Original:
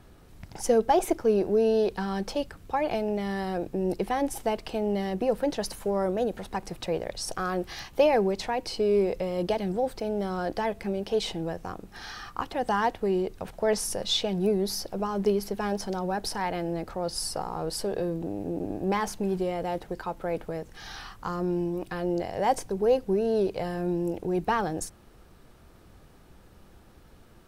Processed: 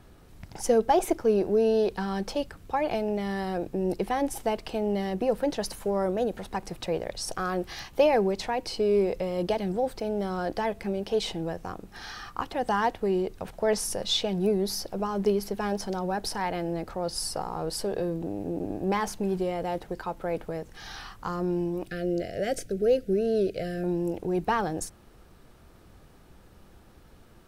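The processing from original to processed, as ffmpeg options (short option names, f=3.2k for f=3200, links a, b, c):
-filter_complex "[0:a]asettb=1/sr,asplit=3[a][b][c];[a]atrim=end=21.894[d];[b]atrim=start=21.89:end=23.84,asetpts=PTS-STARTPTS,afade=t=in:d=0.004:c=qsin,afade=t=out:st=1.946:d=0.004:c=qsin,asuperstop=centerf=960:order=8:qfactor=1.5[e];[c]atrim=start=23.836[f];[d][e]acrossfade=d=0.004:c1=hsin:c2=qsin[g];[g][f]acrossfade=d=0.004:c1=qsin:c2=hsin"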